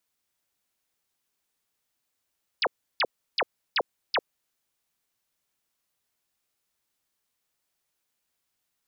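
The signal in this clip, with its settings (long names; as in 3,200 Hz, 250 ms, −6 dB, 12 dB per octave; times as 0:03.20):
repeated falling chirps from 5,500 Hz, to 370 Hz, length 0.05 s sine, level −21 dB, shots 5, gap 0.33 s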